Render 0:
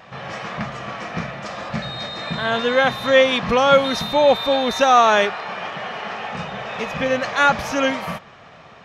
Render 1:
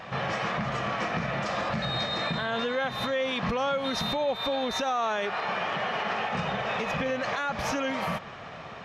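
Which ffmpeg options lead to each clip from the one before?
ffmpeg -i in.wav -af "highshelf=frequency=6400:gain=-5,acompressor=threshold=-24dB:ratio=6,alimiter=limit=-23dB:level=0:latency=1:release=94,volume=3dB" out.wav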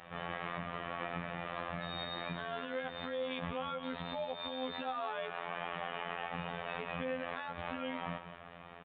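ffmpeg -i in.wav -af "aecho=1:1:179:0.237,afftfilt=real='hypot(re,im)*cos(PI*b)':imag='0':win_size=2048:overlap=0.75,aresample=8000,aresample=44100,volume=-7.5dB" out.wav

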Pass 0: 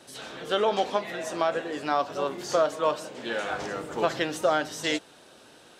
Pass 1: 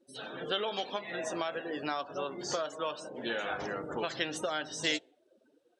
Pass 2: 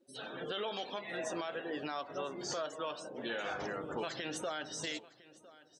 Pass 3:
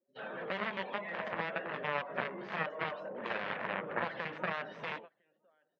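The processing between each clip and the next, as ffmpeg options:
ffmpeg -i in.wav -filter_complex "[0:a]afftdn=noise_reduction=30:noise_floor=-42,acrossover=split=2100[link_01][link_02];[link_01]acompressor=threshold=-33dB:ratio=6[link_03];[link_03][link_02]amix=inputs=2:normalize=0" out.wav
ffmpeg -i in.wav -af "alimiter=level_in=2.5dB:limit=-24dB:level=0:latency=1:release=23,volume=-2.5dB,aecho=1:1:1006:0.1,volume=-2dB" out.wav
ffmpeg -i in.wav -af "aeval=exprs='0.0422*(cos(1*acos(clip(val(0)/0.0422,-1,1)))-cos(1*PI/2))+0.0211*(cos(3*acos(clip(val(0)/0.0422,-1,1)))-cos(3*PI/2))':channel_layout=same,agate=range=-18dB:threshold=-56dB:ratio=16:detection=peak,highpass=170,equalizer=frequency=190:width_type=q:width=4:gain=8,equalizer=frequency=290:width_type=q:width=4:gain=-7,equalizer=frequency=570:width_type=q:width=4:gain=6,equalizer=frequency=1000:width_type=q:width=4:gain=4,equalizer=frequency=1800:width_type=q:width=4:gain=5,lowpass=frequency=2600:width=0.5412,lowpass=frequency=2600:width=1.3066,volume=8.5dB" out.wav

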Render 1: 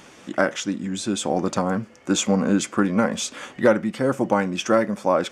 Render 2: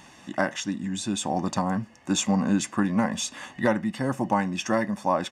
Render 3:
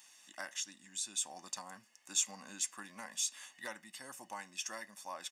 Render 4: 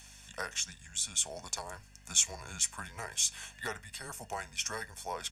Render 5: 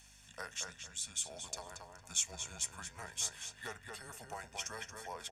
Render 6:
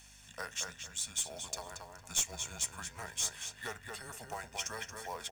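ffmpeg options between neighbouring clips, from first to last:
ffmpeg -i in.wav -af "aecho=1:1:1.1:0.61,volume=-4dB" out.wav
ffmpeg -i in.wav -af "aderivative,volume=-2.5dB" out.wav
ffmpeg -i in.wav -af "afreqshift=-120,aeval=exprs='val(0)+0.000631*(sin(2*PI*50*n/s)+sin(2*PI*2*50*n/s)/2+sin(2*PI*3*50*n/s)/3+sin(2*PI*4*50*n/s)/4+sin(2*PI*5*50*n/s)/5)':channel_layout=same,volume=6.5dB" out.wav
ffmpeg -i in.wav -filter_complex "[0:a]asplit=2[link_01][link_02];[link_02]adelay=228,lowpass=frequency=3300:poles=1,volume=-4dB,asplit=2[link_03][link_04];[link_04]adelay=228,lowpass=frequency=3300:poles=1,volume=0.29,asplit=2[link_05][link_06];[link_06]adelay=228,lowpass=frequency=3300:poles=1,volume=0.29,asplit=2[link_07][link_08];[link_08]adelay=228,lowpass=frequency=3300:poles=1,volume=0.29[link_09];[link_01][link_03][link_05][link_07][link_09]amix=inputs=5:normalize=0,volume=-7dB" out.wav
ffmpeg -i in.wav -af "aeval=exprs='clip(val(0),-1,0.0282)':channel_layout=same,acrusher=bits=4:mode=log:mix=0:aa=0.000001,volume=3dB" out.wav

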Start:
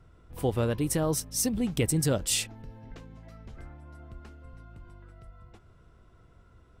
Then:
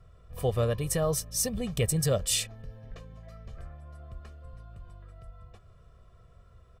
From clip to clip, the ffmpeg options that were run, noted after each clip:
ffmpeg -i in.wav -af "aecho=1:1:1.7:0.75,volume=-2dB" out.wav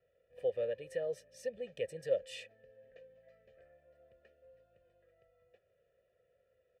ffmpeg -i in.wav -filter_complex "[0:a]asplit=3[link_01][link_02][link_03];[link_01]bandpass=frequency=530:width_type=q:width=8,volume=0dB[link_04];[link_02]bandpass=frequency=1840:width_type=q:width=8,volume=-6dB[link_05];[link_03]bandpass=frequency=2480:width_type=q:width=8,volume=-9dB[link_06];[link_04][link_05][link_06]amix=inputs=3:normalize=0" out.wav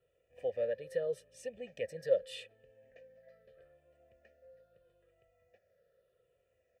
ffmpeg -i in.wav -af "afftfilt=real='re*pow(10,7/40*sin(2*PI*(0.65*log(max(b,1)*sr/1024/100)/log(2)-(-0.8)*(pts-256)/sr)))':imag='im*pow(10,7/40*sin(2*PI*(0.65*log(max(b,1)*sr/1024/100)/log(2)-(-0.8)*(pts-256)/sr)))':win_size=1024:overlap=0.75" out.wav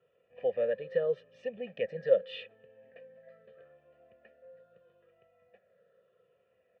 ffmpeg -i in.wav -af "highpass=170,equalizer=frequency=190:width_type=q:width=4:gain=6,equalizer=frequency=320:width_type=q:width=4:gain=-6,equalizer=frequency=600:width_type=q:width=4:gain=-4,equalizer=frequency=1100:width_type=q:width=4:gain=6,equalizer=frequency=2100:width_type=q:width=4:gain=-5,lowpass=frequency=3100:width=0.5412,lowpass=frequency=3100:width=1.3066,volume=7dB" out.wav

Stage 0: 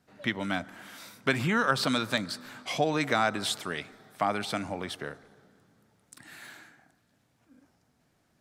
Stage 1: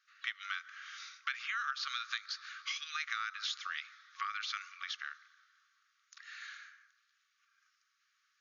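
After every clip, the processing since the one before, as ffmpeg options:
ffmpeg -i in.wav -af "afftfilt=real='re*between(b*sr/4096,1100,6900)':imag='im*between(b*sr/4096,1100,6900)':win_size=4096:overlap=0.75,acompressor=threshold=-35dB:ratio=4" out.wav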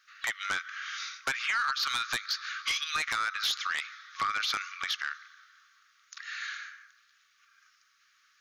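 ffmpeg -i in.wav -af "aeval=exprs='0.106*sin(PI/2*3.16*val(0)/0.106)':channel_layout=same,volume=-3.5dB" out.wav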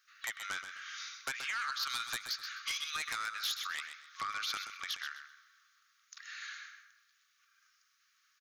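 ffmpeg -i in.wav -af "highshelf=frequency=7600:gain=11.5,aecho=1:1:128|256|384:0.355|0.0816|0.0188,volume=-8.5dB" out.wav

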